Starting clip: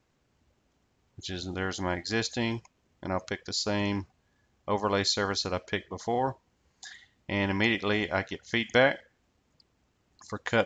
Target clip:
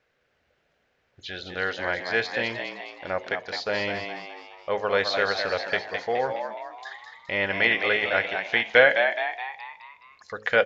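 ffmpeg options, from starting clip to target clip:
-filter_complex "[0:a]bandreject=f=53.42:t=h:w=4,bandreject=f=106.84:t=h:w=4,bandreject=f=160.26:t=h:w=4,bandreject=f=213.68:t=h:w=4,bandreject=f=267.1:t=h:w=4,bandreject=f=320.52:t=h:w=4,bandreject=f=373.94:t=h:w=4,bandreject=f=427.36:t=h:w=4,bandreject=f=480.78:t=h:w=4,bandreject=f=534.2:t=h:w=4,acrossover=split=5400[a][b];[b]acompressor=threshold=-54dB:ratio=4:attack=1:release=60[c];[a][c]amix=inputs=2:normalize=0,firequalizer=gain_entry='entry(320,0);entry(470,14);entry(980,2);entry(1500,12);entry(3100,2);entry(7400,-18)':delay=0.05:min_phase=1,asplit=2[d][e];[e]asplit=6[f][g][h][i][j][k];[f]adelay=210,afreqshift=87,volume=-6.5dB[l];[g]adelay=420,afreqshift=174,volume=-12.9dB[m];[h]adelay=630,afreqshift=261,volume=-19.3dB[n];[i]adelay=840,afreqshift=348,volume=-25.6dB[o];[j]adelay=1050,afreqshift=435,volume=-32dB[p];[k]adelay=1260,afreqshift=522,volume=-38.4dB[q];[l][m][n][o][p][q]amix=inputs=6:normalize=0[r];[d][r]amix=inputs=2:normalize=0,crystalizer=i=5.5:c=0,volume=-7.5dB"

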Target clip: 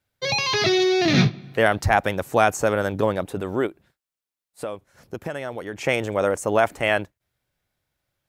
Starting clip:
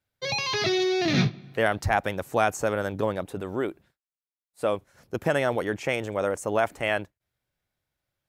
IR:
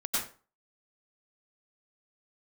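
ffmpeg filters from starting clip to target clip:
-filter_complex "[0:a]asplit=3[a][b][c];[a]afade=t=out:st=3.66:d=0.02[d];[b]acompressor=threshold=-38dB:ratio=2.5,afade=t=in:st=3.66:d=0.02,afade=t=out:st=5.76:d=0.02[e];[c]afade=t=in:st=5.76:d=0.02[f];[d][e][f]amix=inputs=3:normalize=0,volume=5dB"

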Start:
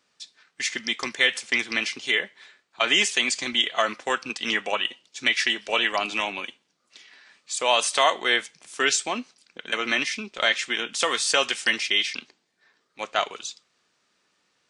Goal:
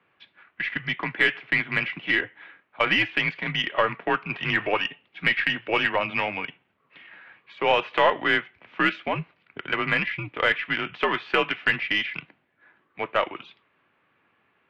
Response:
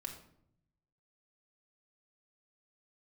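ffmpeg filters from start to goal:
-filter_complex "[0:a]asettb=1/sr,asplit=3[a][b][c];[a]atrim=end=4.314[d];[b]atrim=start=4.31:end=4.87,asetpts=PTS-STARTPTS,afade=t=in:d=0.004:c=qsin,afade=t=out:st=0.556:d=0.004:c=qsin,aeval=exprs='val(0)+0.5*0.0141*sgn(val(0))':c=same[e];[c]atrim=start=4.866[f];[d][e]acrossfade=d=0.004:c1=hsin:c2=qsin[g];[g][f]acrossfade=d=0.004:c1=qsin:c2=hsin,asplit=2[h][i];[i]acompressor=threshold=-35dB:ratio=6,volume=-1dB[j];[h][j]amix=inputs=2:normalize=0,highpass=f=200:t=q:w=0.5412,highpass=f=200:t=q:w=1.307,lowpass=f=2.8k:t=q:w=0.5176,lowpass=f=2.8k:t=q:w=0.7071,lowpass=f=2.8k:t=q:w=1.932,afreqshift=-90,aeval=exprs='0.531*(cos(1*acos(clip(val(0)/0.531,-1,1)))-cos(1*PI/2))+0.0335*(cos(2*acos(clip(val(0)/0.531,-1,1)))-cos(2*PI/2))+0.00841*(cos(6*acos(clip(val(0)/0.531,-1,1)))-cos(6*PI/2))':c=same"

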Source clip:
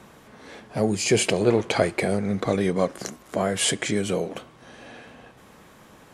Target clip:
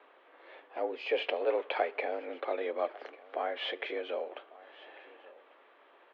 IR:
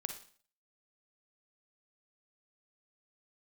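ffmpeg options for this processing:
-filter_complex "[0:a]asplit=2[a][b];[b]aecho=0:1:1147:0.0891[c];[a][c]amix=inputs=2:normalize=0,highpass=f=320:t=q:w=0.5412,highpass=f=320:t=q:w=1.307,lowpass=f=3.3k:t=q:w=0.5176,lowpass=f=3.3k:t=q:w=0.7071,lowpass=f=3.3k:t=q:w=1.932,afreqshift=69,volume=-8.5dB"

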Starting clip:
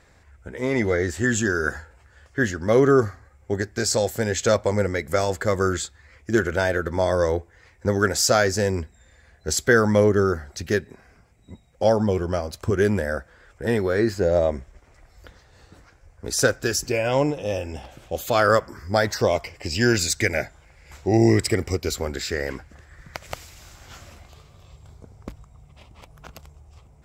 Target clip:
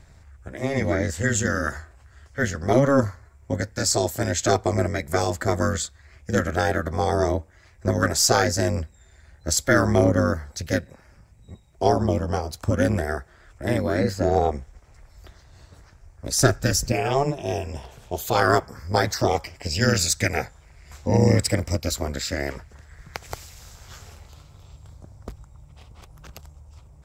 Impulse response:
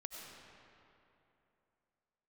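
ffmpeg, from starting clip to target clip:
-filter_complex "[0:a]aeval=exprs='0.708*(cos(1*acos(clip(val(0)/0.708,-1,1)))-cos(1*PI/2))+0.01*(cos(6*acos(clip(val(0)/0.708,-1,1)))-cos(6*PI/2))':c=same,acrossover=split=220|2800[a][b][c];[a]acompressor=mode=upward:threshold=-45dB:ratio=2.5[d];[b]aeval=exprs='val(0)*sin(2*PI*140*n/s)':c=same[e];[d][e][c]amix=inputs=3:normalize=0,asettb=1/sr,asplit=3[f][g][h];[f]atrim=end=16.404[i];[g]atrim=start=16.4:end=16.93,asetpts=PTS-STARTPTS,afade=t=in:d=0.004:c=qsin,afade=t=out:st=0.526:d=0.004:c=qsin,lowshelf=f=150:g=10[j];[h]atrim=start=16.926[k];[i][j]acrossfade=d=0.004:c1=hsin:c2=qsin[l];[l][k]acrossfade=d=0.004:c1=qsin:c2=hsin,volume=2dB"

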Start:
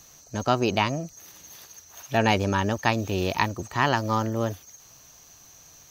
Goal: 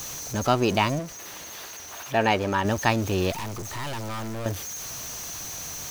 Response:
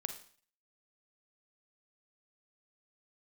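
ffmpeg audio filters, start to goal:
-filter_complex "[0:a]aeval=exprs='val(0)+0.5*0.0282*sgn(val(0))':c=same,asettb=1/sr,asplit=3[a][b][c];[a]atrim=end=0.994[d];[b]atrim=start=0.99:end=2.65,asetpts=PTS-STARTPTS,afade=t=in:d=0.004:c=qsin,afade=t=out:st=1.656:d=0.004:c=qsin,bass=f=250:g=-7,treble=f=4k:g=-7[e];[c]atrim=start=2.646[f];[d][e]acrossfade=d=0.004:c1=hsin:c2=qsin[g];[g][f]acrossfade=d=0.004:c1=qsin:c2=hsin,asettb=1/sr,asplit=3[h][i][j];[h]atrim=end=3.314[k];[i]atrim=start=3.31:end=4.46,asetpts=PTS-STARTPTS,afade=t=in:d=0.004:c=qsin,afade=t=out:st=1.146:d=0.004:c=qsin,aeval=exprs='(tanh(35.5*val(0)+0.35)-tanh(0.35))/35.5':c=same[l];[j]atrim=start=4.456[m];[k][l]acrossfade=d=0.004:c1=hsin:c2=qsin[n];[n][m]acrossfade=d=0.004:c1=qsin:c2=hsin"

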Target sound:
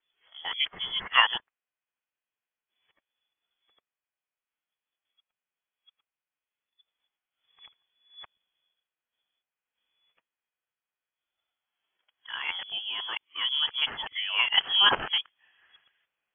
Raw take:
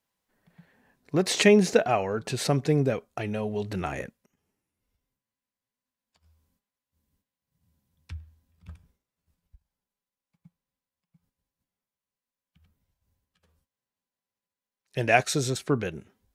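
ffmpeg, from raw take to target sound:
-filter_complex "[0:a]areverse,acrossover=split=880[a][b];[b]acontrast=61[c];[a][c]amix=inputs=2:normalize=0,lowshelf=f=130:g=-9.5,lowpass=f=3k:t=q:w=0.5098,lowpass=f=3k:t=q:w=0.6013,lowpass=f=3k:t=q:w=0.9,lowpass=f=3k:t=q:w=2.563,afreqshift=-3500,volume=-3.5dB"

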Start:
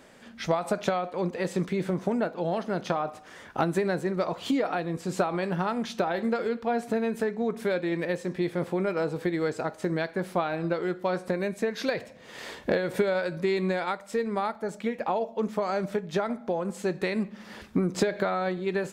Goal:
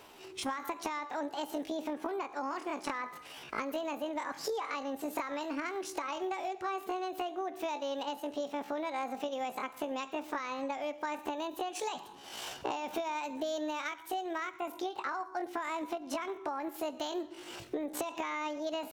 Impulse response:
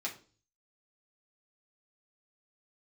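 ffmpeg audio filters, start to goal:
-filter_complex "[0:a]acompressor=threshold=-33dB:ratio=4,asetrate=72056,aresample=44100,atempo=0.612027,asplit=2[a][b];[1:a]atrim=start_sample=2205,lowpass=8.1k,adelay=110[c];[b][c]afir=irnorm=-1:irlink=0,volume=-23.5dB[d];[a][d]amix=inputs=2:normalize=0,volume=-1dB"

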